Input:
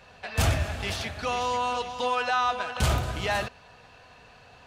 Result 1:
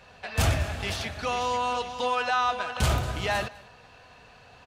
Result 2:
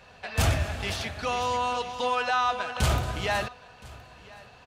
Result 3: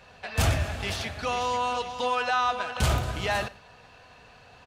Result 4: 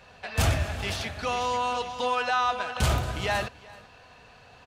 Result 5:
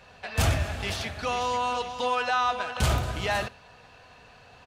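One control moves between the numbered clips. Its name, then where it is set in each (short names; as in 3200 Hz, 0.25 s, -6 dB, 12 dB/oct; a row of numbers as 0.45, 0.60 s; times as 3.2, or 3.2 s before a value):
echo, time: 203, 1019, 112, 384, 72 ms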